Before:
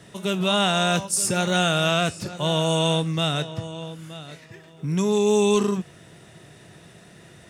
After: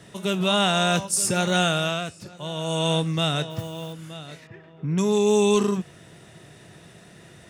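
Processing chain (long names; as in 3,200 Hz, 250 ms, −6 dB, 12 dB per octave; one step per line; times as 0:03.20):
0:01.63–0:02.98: duck −9 dB, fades 0.43 s
0:03.50–0:03.93: noise that follows the level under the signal 20 dB
0:04.47–0:04.98: low-pass filter 2,300 Hz 12 dB per octave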